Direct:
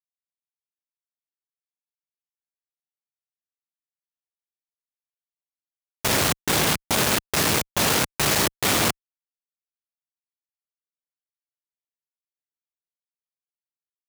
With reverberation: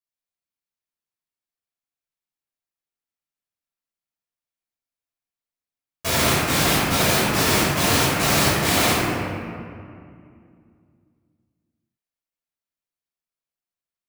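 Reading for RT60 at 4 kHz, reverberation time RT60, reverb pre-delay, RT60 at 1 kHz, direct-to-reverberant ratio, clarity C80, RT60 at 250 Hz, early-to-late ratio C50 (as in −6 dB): 1.3 s, 2.3 s, 6 ms, 2.2 s, −10.5 dB, −1.0 dB, 3.3 s, −3.0 dB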